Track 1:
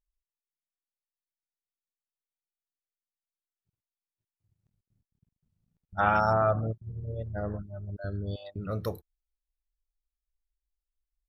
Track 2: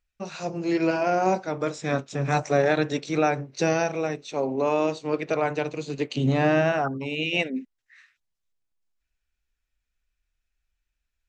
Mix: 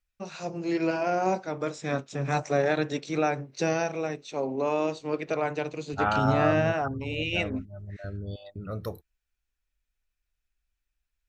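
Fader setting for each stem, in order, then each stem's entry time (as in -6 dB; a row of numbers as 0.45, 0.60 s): -2.0, -3.5 dB; 0.00, 0.00 s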